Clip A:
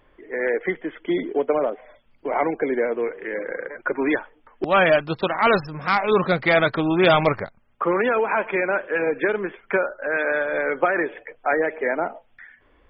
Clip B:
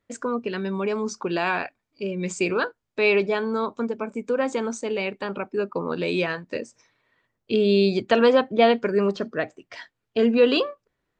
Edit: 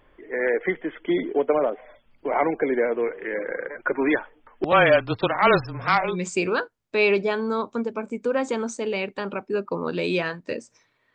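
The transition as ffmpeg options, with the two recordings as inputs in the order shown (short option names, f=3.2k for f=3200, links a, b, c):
-filter_complex "[0:a]asettb=1/sr,asplit=3[a][b][c];[a]atrim=end=4.724[d];[b]atrim=start=4.72:end=6.16,asetpts=PTS-STARTPTS,afade=t=in:d=0.004:c=qsin,afade=t=out:st=1.436:d=0.004:c=qsin,afreqshift=-22[e];[c]atrim=start=6.156[f];[d][e]acrossfade=d=0.004:c1=hsin:c2=qsin[g];[g][f]acrossfade=d=0.004:c1=qsin:c2=hsin,apad=whole_dur=11.14,atrim=end=11.14,atrim=end=6.16,asetpts=PTS-STARTPTS[h];[1:a]atrim=start=2.08:end=7.18,asetpts=PTS-STARTPTS[i];[h][i]acrossfade=d=0.12:c1=tri:c2=tri"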